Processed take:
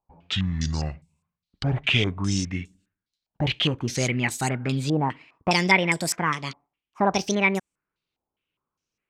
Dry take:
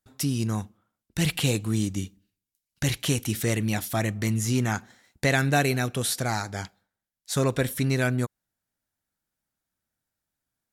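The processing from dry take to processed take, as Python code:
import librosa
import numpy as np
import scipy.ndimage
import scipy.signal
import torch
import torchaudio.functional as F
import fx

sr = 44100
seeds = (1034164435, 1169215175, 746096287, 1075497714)

y = fx.speed_glide(x, sr, from_pct=62, to_pct=174)
y = fx.spec_box(y, sr, start_s=1.02, length_s=0.47, low_hz=220.0, high_hz=2000.0, gain_db=-14)
y = fx.filter_held_lowpass(y, sr, hz=4.9, low_hz=810.0, high_hz=8000.0)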